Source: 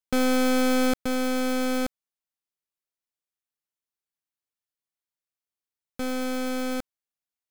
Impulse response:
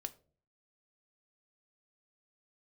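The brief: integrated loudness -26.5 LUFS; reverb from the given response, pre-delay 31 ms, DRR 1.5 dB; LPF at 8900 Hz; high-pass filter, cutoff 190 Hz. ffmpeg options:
-filter_complex "[0:a]highpass=190,lowpass=8.9k,asplit=2[a][b];[1:a]atrim=start_sample=2205,adelay=31[c];[b][c]afir=irnorm=-1:irlink=0,volume=1.5dB[d];[a][d]amix=inputs=2:normalize=0,volume=-3.5dB"

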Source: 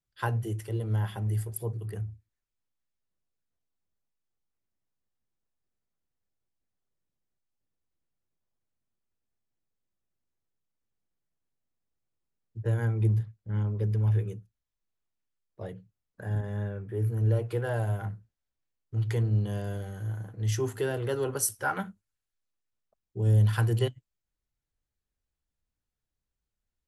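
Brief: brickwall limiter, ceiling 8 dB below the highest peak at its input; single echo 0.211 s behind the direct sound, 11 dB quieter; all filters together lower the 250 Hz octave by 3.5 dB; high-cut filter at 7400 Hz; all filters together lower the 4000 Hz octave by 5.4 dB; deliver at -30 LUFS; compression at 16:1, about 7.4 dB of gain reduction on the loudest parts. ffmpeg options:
-af "lowpass=7.4k,equalizer=f=250:t=o:g=-5.5,equalizer=f=4k:t=o:g=-8,acompressor=threshold=-26dB:ratio=16,alimiter=level_in=2.5dB:limit=-24dB:level=0:latency=1,volume=-2.5dB,aecho=1:1:211:0.282,volume=5dB"

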